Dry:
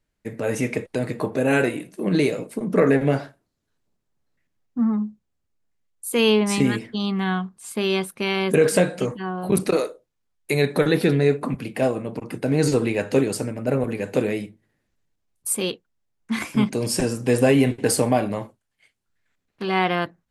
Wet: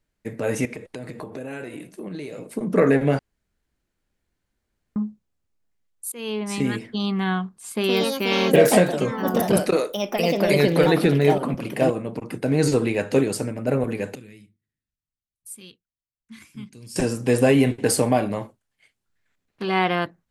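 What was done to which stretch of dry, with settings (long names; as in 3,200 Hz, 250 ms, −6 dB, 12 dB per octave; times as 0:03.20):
0:00.65–0:02.55: downward compressor, threshold −31 dBFS
0:03.19–0:04.96: fill with room tone
0:06.12–0:06.97: fade in, from −23 dB
0:07.71–0:12.54: delay with pitch and tempo change per echo 128 ms, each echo +3 semitones, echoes 2
0:14.15–0:16.96: guitar amp tone stack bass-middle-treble 6-0-2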